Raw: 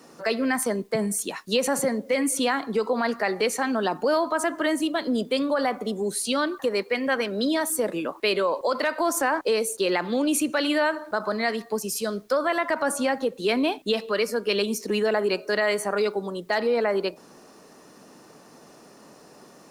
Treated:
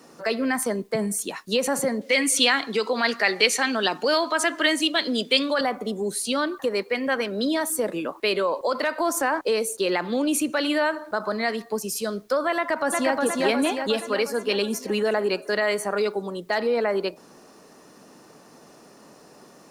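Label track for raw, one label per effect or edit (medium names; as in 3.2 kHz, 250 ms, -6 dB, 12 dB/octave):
2.010000	5.610000	frequency weighting D
12.560000	13.150000	echo throw 360 ms, feedback 60%, level -1.5 dB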